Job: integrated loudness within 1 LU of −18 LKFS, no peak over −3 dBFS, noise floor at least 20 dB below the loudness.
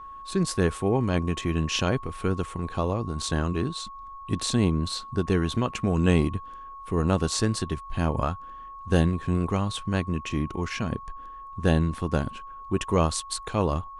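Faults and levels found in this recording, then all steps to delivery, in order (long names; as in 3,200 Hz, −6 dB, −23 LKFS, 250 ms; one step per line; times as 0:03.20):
interfering tone 1,100 Hz; level of the tone −39 dBFS; integrated loudness −27.0 LKFS; sample peak −7.0 dBFS; target loudness −18.0 LKFS
→ notch filter 1,100 Hz, Q 30
level +9 dB
brickwall limiter −3 dBFS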